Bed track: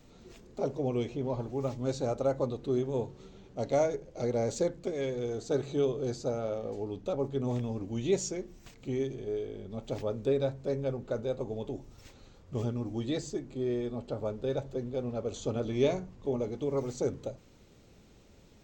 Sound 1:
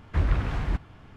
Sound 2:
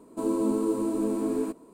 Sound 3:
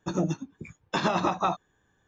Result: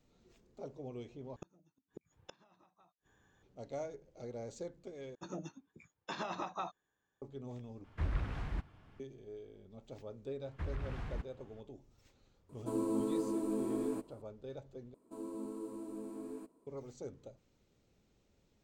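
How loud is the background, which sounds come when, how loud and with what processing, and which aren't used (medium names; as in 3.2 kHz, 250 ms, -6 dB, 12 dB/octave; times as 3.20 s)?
bed track -14.5 dB
1.36 s: replace with 3 -1 dB + inverted gate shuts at -32 dBFS, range -42 dB
5.15 s: replace with 3 -13.5 dB + bass shelf 190 Hz -10 dB
7.84 s: replace with 1 -11.5 dB
10.45 s: add 1 -13.5 dB + peak limiter -17.5 dBFS
12.49 s: add 2 -8.5 dB
14.94 s: replace with 2 -17.5 dB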